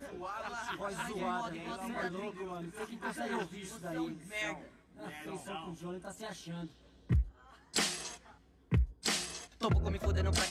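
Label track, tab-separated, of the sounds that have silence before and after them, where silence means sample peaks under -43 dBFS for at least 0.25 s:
4.990000	6.670000	sound
7.100000	7.280000	sound
7.740000	8.160000	sound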